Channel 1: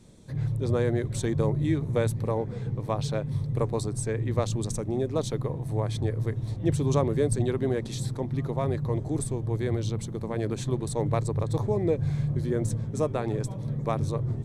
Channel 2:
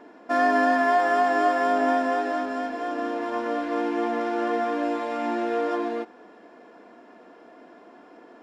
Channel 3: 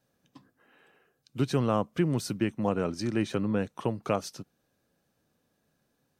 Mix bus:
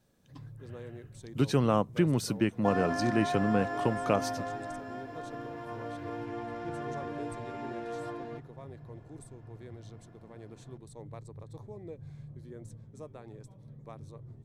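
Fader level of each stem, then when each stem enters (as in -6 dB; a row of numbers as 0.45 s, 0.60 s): -19.0 dB, -13.0 dB, +0.5 dB; 0.00 s, 2.35 s, 0.00 s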